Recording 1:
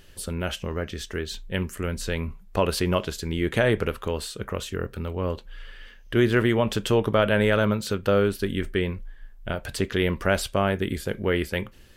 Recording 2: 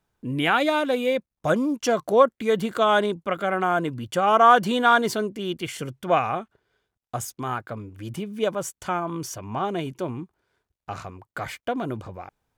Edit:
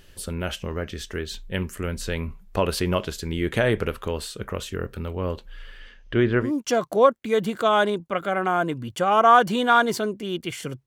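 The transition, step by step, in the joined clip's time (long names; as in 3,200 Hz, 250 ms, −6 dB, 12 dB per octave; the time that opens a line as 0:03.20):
recording 1
0:05.79–0:06.52: low-pass filter 11,000 Hz → 1,200 Hz
0:06.45: continue with recording 2 from 0:01.61, crossfade 0.14 s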